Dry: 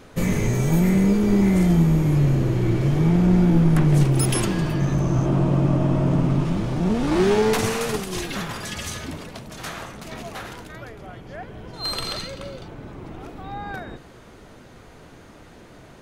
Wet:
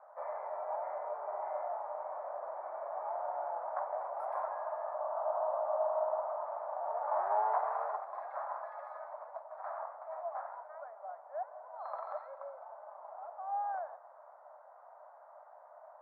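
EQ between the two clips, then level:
Chebyshev high-pass filter 600 Hz, order 6
inverse Chebyshev low-pass filter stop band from 2,700 Hz, stop band 50 dB
0.0 dB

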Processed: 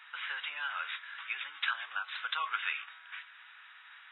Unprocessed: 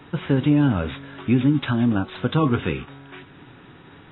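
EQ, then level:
inverse Chebyshev high-pass filter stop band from 250 Hz, stop band 80 dB
high-shelf EQ 2,200 Hz −11 dB
+5.5 dB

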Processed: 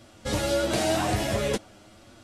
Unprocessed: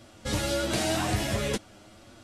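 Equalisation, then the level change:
dynamic equaliser 590 Hz, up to +5 dB, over −42 dBFS, Q 0.9
0.0 dB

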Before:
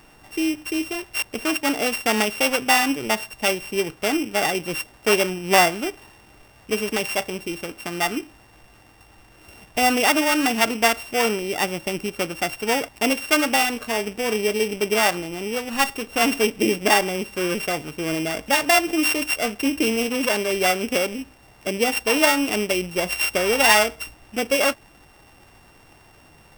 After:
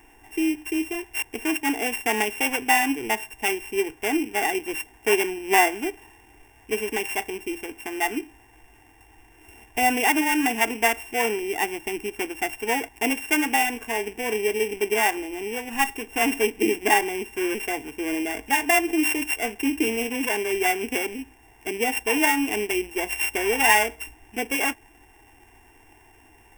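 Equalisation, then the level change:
phaser with its sweep stopped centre 850 Hz, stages 8
0.0 dB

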